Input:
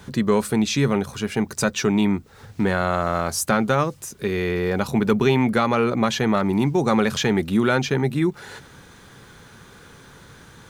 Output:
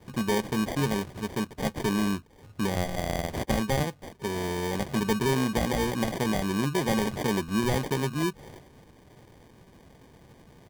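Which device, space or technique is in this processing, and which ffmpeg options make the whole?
crushed at another speed: -af "asetrate=35280,aresample=44100,acrusher=samples=41:mix=1:aa=0.000001,asetrate=55125,aresample=44100,volume=-7dB"

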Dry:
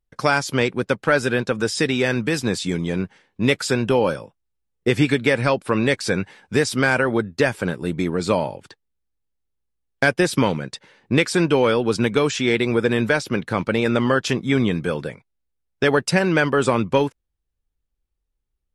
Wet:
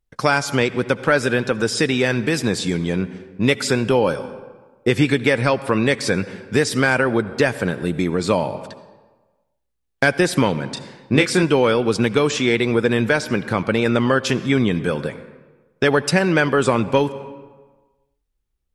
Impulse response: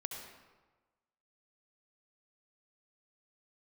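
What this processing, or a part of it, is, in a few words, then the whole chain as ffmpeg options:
ducked reverb: -filter_complex "[0:a]asettb=1/sr,asplit=3[link_01][link_02][link_03];[link_01]atrim=end=10.744[link_04];[link_02]atrim=start=10.74:end=11.43,asetpts=PTS-STARTPTS,afade=type=in:duration=0.004:curve=qsin,afade=type=out:start_time=0.686:duration=0.004:curve=qsin,asplit=2[link_05][link_06];[link_06]adelay=27,volume=-5.5dB[link_07];[link_05][link_07]amix=inputs=2:normalize=0,atrim=end_sample=30429[link_08];[link_03]atrim=start=11.426[link_09];[link_04][link_08]acrossfade=duration=0.004:curve1=hsin:curve2=qsin[link_10];[link_10][link_09]acrossfade=duration=0.004:curve1=qsin:curve2=hsin,asplit=3[link_11][link_12][link_13];[1:a]atrim=start_sample=2205[link_14];[link_12][link_14]afir=irnorm=-1:irlink=0[link_15];[link_13]apad=whole_len=826827[link_16];[link_15][link_16]sidechaincompress=threshold=-22dB:ratio=8:attack=16:release=264,volume=-5dB[link_17];[link_11][link_17]amix=inputs=2:normalize=0"

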